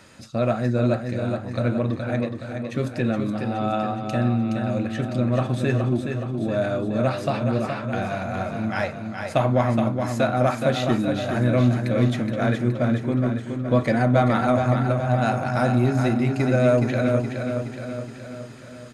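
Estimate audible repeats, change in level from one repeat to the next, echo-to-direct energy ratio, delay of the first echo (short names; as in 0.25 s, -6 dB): 6, -5.0 dB, -4.5 dB, 0.42 s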